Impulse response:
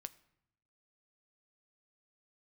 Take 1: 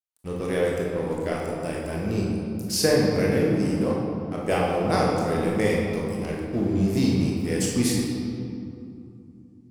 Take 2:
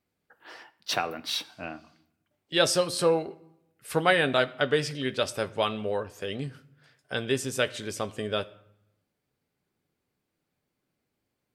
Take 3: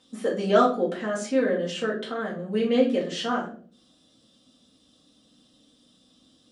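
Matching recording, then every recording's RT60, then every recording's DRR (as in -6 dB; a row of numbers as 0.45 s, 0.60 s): 2; 2.7 s, 0.75 s, 0.45 s; -3.5 dB, 12.0 dB, -6.5 dB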